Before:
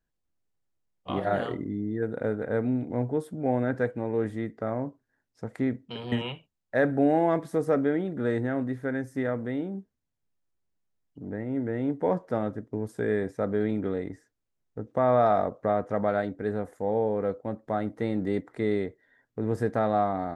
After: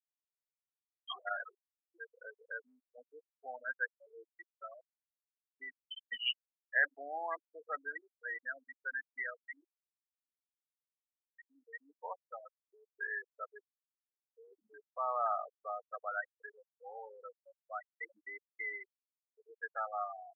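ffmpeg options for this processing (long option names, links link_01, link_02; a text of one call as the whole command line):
ffmpeg -i in.wav -filter_complex "[0:a]asettb=1/sr,asplit=3[link_01][link_02][link_03];[link_01]atrim=end=5.844[link_04];[link_02]atrim=start=5.84:end=6.26,asetpts=PTS-STARTPTS,afade=type=in:duration=0.004:curve=qsin,afade=type=out:start_time=0.416:duration=0.004:curve=qsin,aemphasis=mode=reproduction:type=75kf[link_05];[link_03]atrim=start=6.256[link_06];[link_04][link_05]acrossfade=duration=0.004:curve1=hsin:curve2=qsin[link_07];[link_07][link_06]acrossfade=duration=0.004:curve1=qsin:curve2=hsin,asplit=3[link_08][link_09][link_10];[link_08]atrim=end=13.592[link_11];[link_09]atrim=start=13.588:end=14.802,asetpts=PTS-STARTPTS,areverse[link_12];[link_10]atrim=start=14.798[link_13];[link_11][link_12]acrossfade=duration=0.004:curve1=hsin:curve2=hsin[link_14];[link_14][link_13]acrossfade=duration=0.004:curve1=hsin:curve2=hsin,aderivative,afftfilt=real='re*gte(hypot(re,im),0.0141)':imag='im*gte(hypot(re,im),0.0141)':win_size=1024:overlap=0.75,highpass=1300,volume=16.5dB" out.wav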